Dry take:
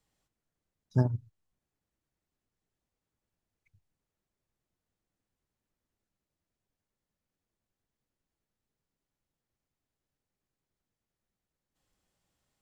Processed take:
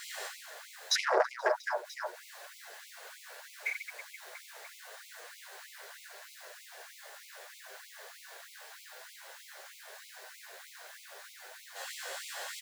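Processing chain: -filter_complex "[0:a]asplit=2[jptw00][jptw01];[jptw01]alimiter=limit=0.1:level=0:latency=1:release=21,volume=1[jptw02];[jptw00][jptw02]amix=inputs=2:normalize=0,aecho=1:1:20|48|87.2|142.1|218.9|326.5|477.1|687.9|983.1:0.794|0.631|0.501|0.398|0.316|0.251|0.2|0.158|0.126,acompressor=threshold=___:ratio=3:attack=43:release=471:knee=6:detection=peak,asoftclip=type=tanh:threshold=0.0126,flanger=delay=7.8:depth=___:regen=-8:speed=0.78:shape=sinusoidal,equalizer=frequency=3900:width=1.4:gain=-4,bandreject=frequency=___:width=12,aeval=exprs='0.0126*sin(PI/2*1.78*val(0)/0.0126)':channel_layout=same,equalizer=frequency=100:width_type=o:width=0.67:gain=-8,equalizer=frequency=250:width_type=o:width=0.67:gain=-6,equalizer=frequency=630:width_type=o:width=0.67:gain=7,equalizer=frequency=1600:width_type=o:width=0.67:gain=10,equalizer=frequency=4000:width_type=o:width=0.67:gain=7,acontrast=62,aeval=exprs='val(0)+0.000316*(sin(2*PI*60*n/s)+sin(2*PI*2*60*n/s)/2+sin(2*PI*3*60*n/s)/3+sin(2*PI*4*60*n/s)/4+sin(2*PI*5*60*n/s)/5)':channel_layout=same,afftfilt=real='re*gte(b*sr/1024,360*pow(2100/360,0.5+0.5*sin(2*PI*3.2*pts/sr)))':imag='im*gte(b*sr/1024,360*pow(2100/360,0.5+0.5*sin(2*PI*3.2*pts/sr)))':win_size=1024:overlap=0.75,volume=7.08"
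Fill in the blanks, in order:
0.00891, 7.1, 1300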